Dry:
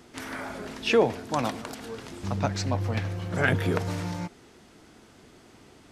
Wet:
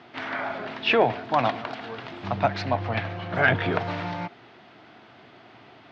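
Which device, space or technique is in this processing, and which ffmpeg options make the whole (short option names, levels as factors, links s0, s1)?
overdrive pedal into a guitar cabinet: -filter_complex "[0:a]asplit=2[s0][s1];[s1]highpass=f=720:p=1,volume=3.98,asoftclip=type=tanh:threshold=0.473[s2];[s0][s2]amix=inputs=2:normalize=0,lowpass=f=4300:p=1,volume=0.501,highpass=91,equalizer=f=120:t=q:w=4:g=10,equalizer=f=480:t=q:w=4:g=-5,equalizer=f=690:t=q:w=4:g=6,lowpass=f=3900:w=0.5412,lowpass=f=3900:w=1.3066"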